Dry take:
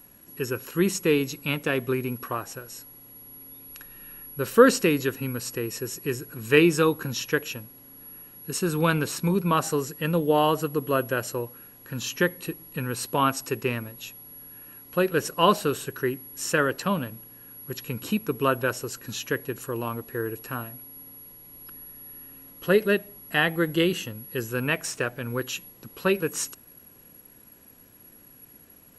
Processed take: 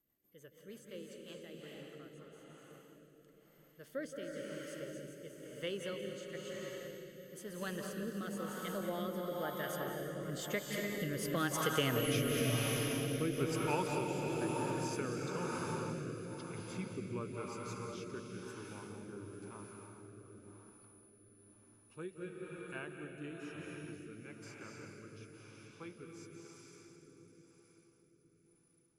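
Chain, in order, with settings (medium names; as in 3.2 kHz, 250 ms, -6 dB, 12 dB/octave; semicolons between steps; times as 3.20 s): Doppler pass-by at 12.04 s, 47 m/s, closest 4.3 m; reverberation RT60 5.6 s, pre-delay 163 ms, DRR -1 dB; rotary cabinet horn 6.3 Hz, later 1 Hz, at 0.83 s; compression 2.5:1, threshold -52 dBFS, peak gain reduction 12.5 dB; trim +17 dB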